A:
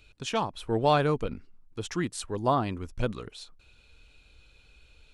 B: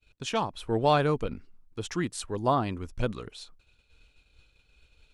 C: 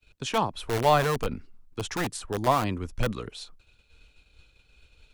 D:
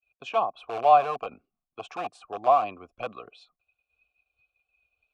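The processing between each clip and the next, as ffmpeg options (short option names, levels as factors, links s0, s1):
-af "agate=range=0.0224:threshold=0.00316:ratio=3:detection=peak"
-filter_complex "[0:a]acrossover=split=170|400|1800[s0][s1][s2][s3];[s1]aeval=exprs='(mod(31.6*val(0)+1,2)-1)/31.6':c=same[s4];[s3]alimiter=level_in=1.41:limit=0.0631:level=0:latency=1:release=200,volume=0.708[s5];[s0][s4][s2][s5]amix=inputs=4:normalize=0,volume=1.5"
-filter_complex "[0:a]afftdn=nr=15:nf=-50,asplit=3[s0][s1][s2];[s0]bandpass=f=730:t=q:w=8,volume=1[s3];[s1]bandpass=f=1090:t=q:w=8,volume=0.501[s4];[s2]bandpass=f=2440:t=q:w=8,volume=0.355[s5];[s3][s4][s5]amix=inputs=3:normalize=0,volume=2.82"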